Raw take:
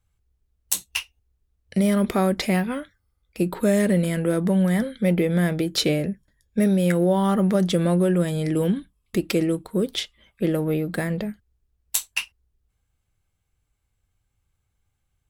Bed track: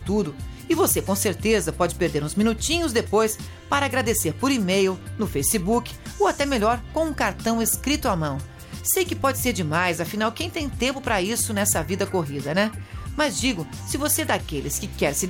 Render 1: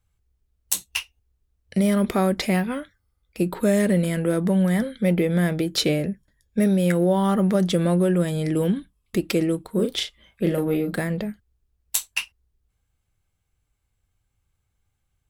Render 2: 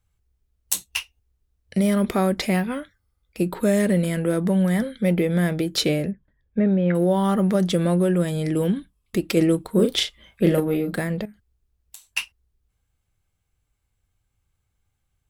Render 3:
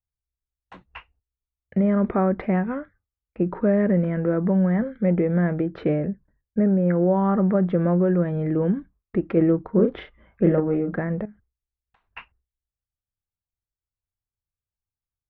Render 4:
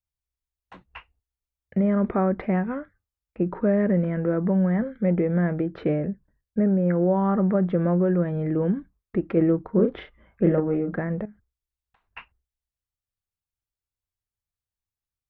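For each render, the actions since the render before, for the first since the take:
9.72–10.98 s: doubling 36 ms -5 dB
6.11–6.95 s: Gaussian low-pass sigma 3.3 samples; 9.37–10.60 s: gain +4 dB; 11.25–12.10 s: compression 16:1, threshold -39 dBFS
gate with hold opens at -53 dBFS; low-pass 1.7 kHz 24 dB/octave
trim -1.5 dB

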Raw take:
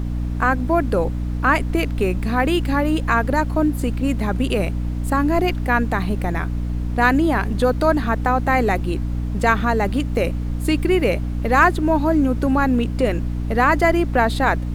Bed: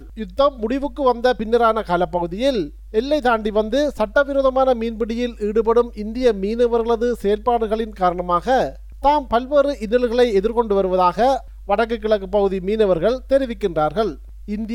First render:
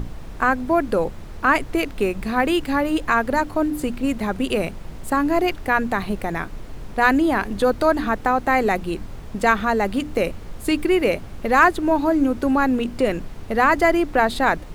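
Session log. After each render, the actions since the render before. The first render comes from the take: hum notches 60/120/180/240/300 Hz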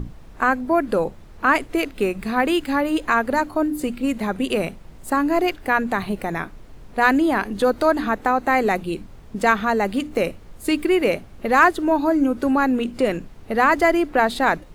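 noise print and reduce 8 dB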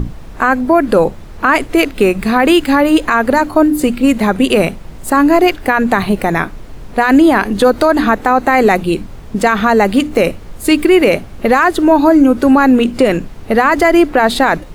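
loudness maximiser +11.5 dB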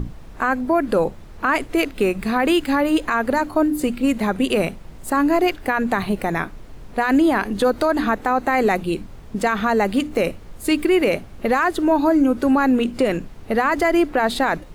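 trim -8 dB

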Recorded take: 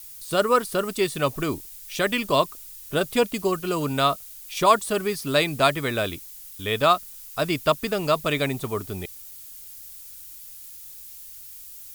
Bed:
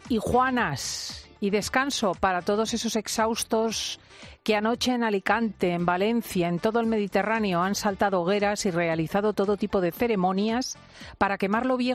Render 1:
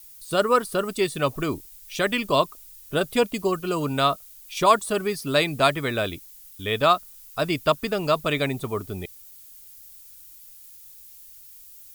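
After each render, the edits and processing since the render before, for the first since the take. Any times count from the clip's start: noise reduction 6 dB, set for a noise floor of -42 dBFS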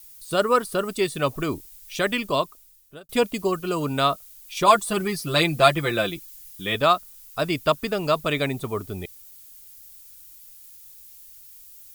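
2.11–3.09 s: fade out; 4.67–6.75 s: comb 5.8 ms, depth 84%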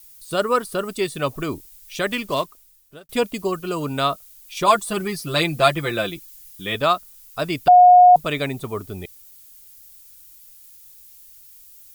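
2.11–3.14 s: block-companded coder 5-bit; 7.68–8.16 s: bleep 721 Hz -6 dBFS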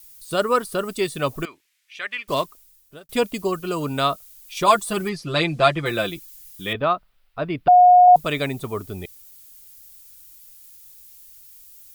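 1.45–2.28 s: band-pass filter 2.1 kHz, Q 2; 5.09–5.86 s: distance through air 81 m; 6.73–8.08 s: distance through air 430 m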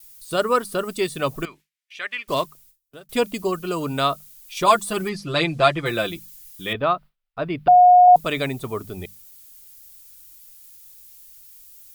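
hum notches 50/100/150/200 Hz; gate with hold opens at -42 dBFS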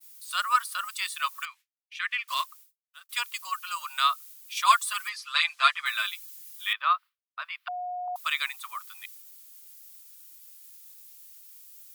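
expander -43 dBFS; elliptic high-pass 1.1 kHz, stop band 80 dB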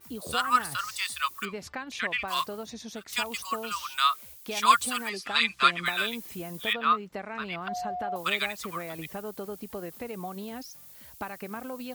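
add bed -13.5 dB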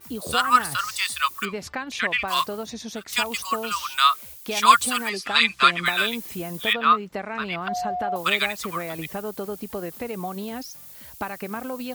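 trim +6 dB; peak limiter -1 dBFS, peak gain reduction 2 dB

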